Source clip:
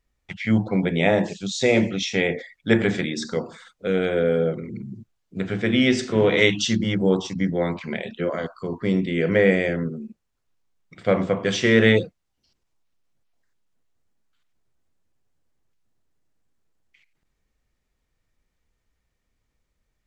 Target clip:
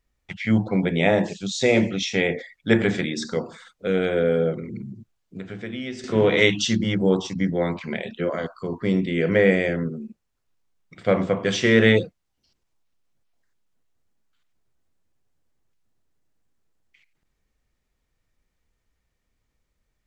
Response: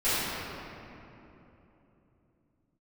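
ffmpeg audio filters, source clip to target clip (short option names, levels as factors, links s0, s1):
-filter_complex "[0:a]asettb=1/sr,asplit=3[s0][s1][s2];[s0]atrim=end=4.914[s3];[s1]atrim=start=4.91:end=6.04,asetpts=PTS-STARTPTS,afade=t=in:d=0.004:c=qsin,afade=t=out:st=1.126:d=0.004:c=qsin,acompressor=threshold=0.0158:ratio=2.5[s4];[s2]atrim=start=6.036[s5];[s3][s4]acrossfade=d=0.004:c1=hsin:c2=qsin[s6];[s6][s5]acrossfade=d=0.004:c1=qsin:c2=hsin"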